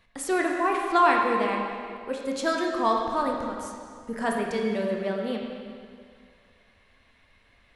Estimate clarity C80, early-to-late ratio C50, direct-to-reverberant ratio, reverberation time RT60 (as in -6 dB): 3.0 dB, 1.5 dB, -0.5 dB, 2.1 s